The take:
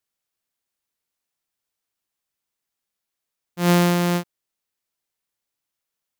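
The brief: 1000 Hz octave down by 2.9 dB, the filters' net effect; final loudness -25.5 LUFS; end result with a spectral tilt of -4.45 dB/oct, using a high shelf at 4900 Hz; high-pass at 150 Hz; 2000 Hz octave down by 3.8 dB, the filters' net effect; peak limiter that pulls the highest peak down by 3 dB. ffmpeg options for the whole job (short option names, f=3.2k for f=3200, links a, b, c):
-af "highpass=150,equalizer=f=1k:t=o:g=-3,equalizer=f=2k:t=o:g=-5,highshelf=f=4.9k:g=6.5,volume=-3.5dB,alimiter=limit=-6.5dB:level=0:latency=1"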